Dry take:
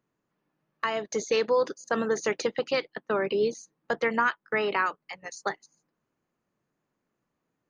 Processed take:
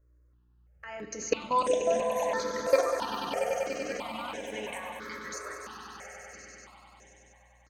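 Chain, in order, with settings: comb 3.7 ms, depth 34%; level quantiser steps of 22 dB; buzz 60 Hz, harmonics 10, -70 dBFS -8 dB/oct; echoes that change speed 0.742 s, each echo +5 st, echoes 3, each echo -6 dB; swelling echo 97 ms, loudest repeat 5, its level -10 dB; FDN reverb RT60 0.91 s, low-frequency decay 0.8×, high-frequency decay 0.45×, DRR 6 dB; step phaser 3 Hz 820–4500 Hz; gain +5.5 dB

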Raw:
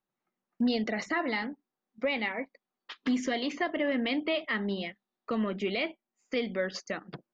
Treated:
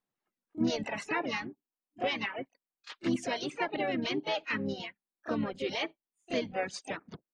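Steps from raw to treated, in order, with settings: harmoniser -12 st -13 dB, -4 st -12 dB, +5 st -3 dB; pre-echo 30 ms -15 dB; reverb removal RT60 1.1 s; gain -3.5 dB

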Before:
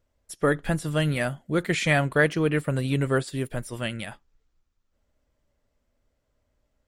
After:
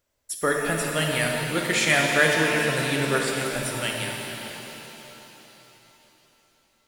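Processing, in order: tilt +2.5 dB/oct; shimmer reverb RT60 3.8 s, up +7 st, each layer -8 dB, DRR 0 dB

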